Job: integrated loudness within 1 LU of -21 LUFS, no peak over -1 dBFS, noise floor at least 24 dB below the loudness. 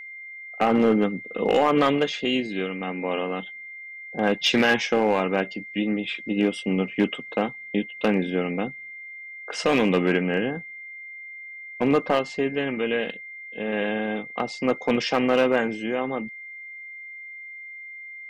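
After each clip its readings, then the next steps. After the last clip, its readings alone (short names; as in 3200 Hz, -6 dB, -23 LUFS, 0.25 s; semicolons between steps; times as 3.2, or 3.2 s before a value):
clipped 0.4%; flat tops at -12.0 dBFS; steady tone 2100 Hz; tone level -37 dBFS; loudness -24.5 LUFS; peak -12.0 dBFS; loudness target -21.0 LUFS
-> clip repair -12 dBFS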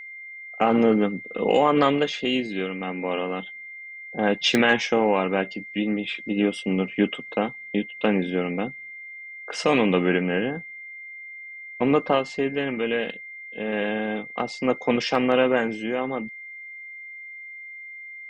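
clipped 0.0%; steady tone 2100 Hz; tone level -37 dBFS
-> notch 2100 Hz, Q 30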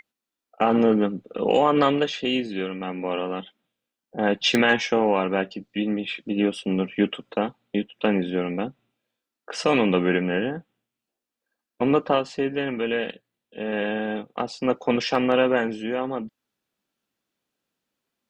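steady tone none; loudness -24.0 LUFS; peak -3.0 dBFS; loudness target -21.0 LUFS
-> gain +3 dB; limiter -1 dBFS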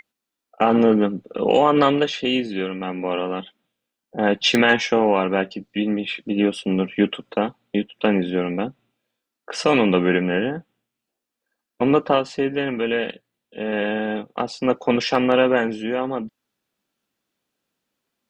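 loudness -21.0 LUFS; peak -1.0 dBFS; noise floor -84 dBFS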